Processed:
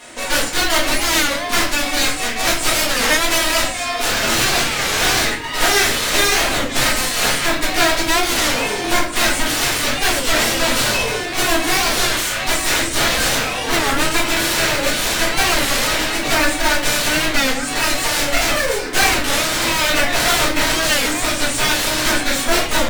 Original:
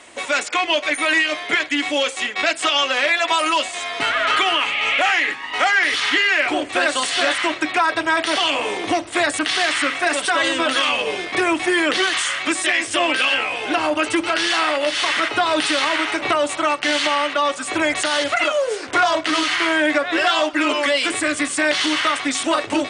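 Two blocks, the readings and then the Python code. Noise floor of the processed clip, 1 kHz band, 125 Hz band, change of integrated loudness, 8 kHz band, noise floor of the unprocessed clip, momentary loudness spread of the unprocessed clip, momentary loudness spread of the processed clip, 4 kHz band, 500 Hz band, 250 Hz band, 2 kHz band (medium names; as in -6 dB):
-24 dBFS, 0.0 dB, +17.0 dB, +2.0 dB, +9.5 dB, -31 dBFS, 4 LU, 3 LU, +3.0 dB, 0.0 dB, +0.5 dB, +0.5 dB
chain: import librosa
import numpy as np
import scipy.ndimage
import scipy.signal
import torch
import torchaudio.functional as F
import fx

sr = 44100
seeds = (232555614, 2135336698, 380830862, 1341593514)

y = fx.envelope_flatten(x, sr, power=0.6)
y = fx.dereverb_blind(y, sr, rt60_s=0.55)
y = fx.quant_float(y, sr, bits=2)
y = fx.cheby_harmonics(y, sr, harmonics=(6, 7), levels_db=(-14, -7), full_scale_db=-6.0)
y = fx.room_shoebox(y, sr, seeds[0], volume_m3=88.0, walls='mixed', distance_m=1.8)
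y = fx.record_warp(y, sr, rpm=33.33, depth_cents=160.0)
y = y * librosa.db_to_amplitude(-7.0)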